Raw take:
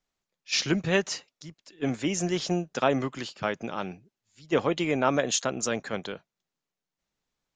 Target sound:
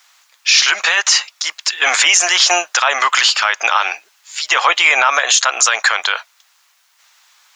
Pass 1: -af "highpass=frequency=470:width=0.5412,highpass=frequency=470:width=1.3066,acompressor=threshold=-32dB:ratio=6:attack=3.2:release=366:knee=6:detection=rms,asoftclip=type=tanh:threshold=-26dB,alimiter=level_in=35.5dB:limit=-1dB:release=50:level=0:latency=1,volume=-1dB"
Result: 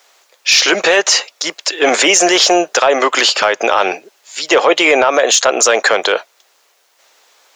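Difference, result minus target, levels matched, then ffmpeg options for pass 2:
500 Hz band +13.5 dB; soft clipping: distortion +16 dB
-af "highpass=frequency=960:width=0.5412,highpass=frequency=960:width=1.3066,acompressor=threshold=-32dB:ratio=6:attack=3.2:release=366:knee=6:detection=rms,asoftclip=type=tanh:threshold=-16.5dB,alimiter=level_in=35.5dB:limit=-1dB:release=50:level=0:latency=1,volume=-1dB"

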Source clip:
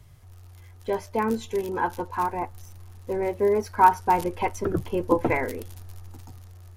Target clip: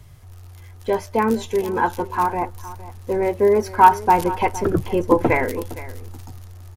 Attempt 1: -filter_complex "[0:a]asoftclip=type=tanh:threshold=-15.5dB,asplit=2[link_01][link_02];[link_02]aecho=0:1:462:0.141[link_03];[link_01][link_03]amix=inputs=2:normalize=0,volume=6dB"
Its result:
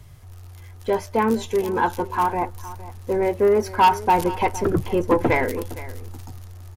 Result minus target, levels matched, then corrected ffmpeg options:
soft clipping: distortion +16 dB
-filter_complex "[0:a]asoftclip=type=tanh:threshold=-4dB,asplit=2[link_01][link_02];[link_02]aecho=0:1:462:0.141[link_03];[link_01][link_03]amix=inputs=2:normalize=0,volume=6dB"

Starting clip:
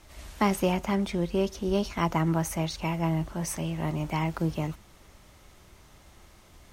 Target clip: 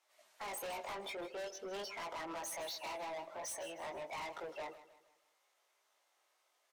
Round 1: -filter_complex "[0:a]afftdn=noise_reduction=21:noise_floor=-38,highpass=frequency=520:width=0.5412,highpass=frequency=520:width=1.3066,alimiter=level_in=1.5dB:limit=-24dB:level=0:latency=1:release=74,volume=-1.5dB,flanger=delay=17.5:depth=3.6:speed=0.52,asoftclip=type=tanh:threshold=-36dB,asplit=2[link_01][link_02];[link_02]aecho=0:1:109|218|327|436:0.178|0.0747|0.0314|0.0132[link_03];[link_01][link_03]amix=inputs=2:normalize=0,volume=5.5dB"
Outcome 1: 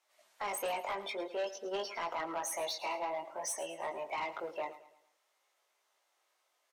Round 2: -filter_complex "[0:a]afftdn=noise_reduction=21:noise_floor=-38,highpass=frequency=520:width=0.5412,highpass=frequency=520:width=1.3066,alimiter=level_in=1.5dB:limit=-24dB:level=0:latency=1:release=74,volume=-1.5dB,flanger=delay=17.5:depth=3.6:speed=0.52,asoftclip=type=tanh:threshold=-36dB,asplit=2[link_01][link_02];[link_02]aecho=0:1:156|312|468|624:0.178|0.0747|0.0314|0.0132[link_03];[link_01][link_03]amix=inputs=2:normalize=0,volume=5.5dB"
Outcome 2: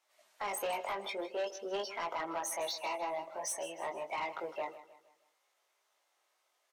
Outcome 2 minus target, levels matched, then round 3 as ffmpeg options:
soft clipping: distortion −8 dB
-filter_complex "[0:a]afftdn=noise_reduction=21:noise_floor=-38,highpass=frequency=520:width=0.5412,highpass=frequency=520:width=1.3066,alimiter=level_in=1.5dB:limit=-24dB:level=0:latency=1:release=74,volume=-1.5dB,flanger=delay=17.5:depth=3.6:speed=0.52,asoftclip=type=tanh:threshold=-46.5dB,asplit=2[link_01][link_02];[link_02]aecho=0:1:156|312|468|624:0.178|0.0747|0.0314|0.0132[link_03];[link_01][link_03]amix=inputs=2:normalize=0,volume=5.5dB"

